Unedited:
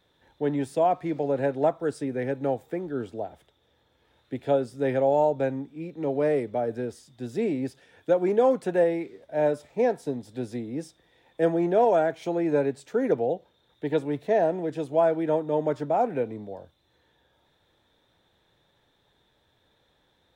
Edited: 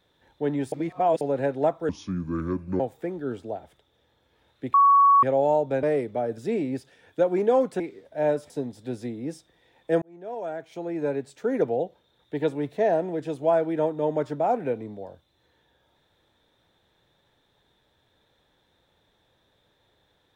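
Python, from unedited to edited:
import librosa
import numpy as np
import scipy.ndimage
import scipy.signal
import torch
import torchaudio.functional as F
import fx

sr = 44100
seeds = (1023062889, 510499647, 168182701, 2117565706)

y = fx.edit(x, sr, fx.reverse_span(start_s=0.72, length_s=0.49),
    fx.speed_span(start_s=1.89, length_s=0.6, speed=0.66),
    fx.bleep(start_s=4.43, length_s=0.49, hz=1120.0, db=-13.0),
    fx.cut(start_s=5.52, length_s=0.7),
    fx.cut(start_s=6.77, length_s=0.51),
    fx.cut(start_s=8.7, length_s=0.27),
    fx.cut(start_s=9.67, length_s=0.33),
    fx.fade_in_span(start_s=11.52, length_s=1.6), tone=tone)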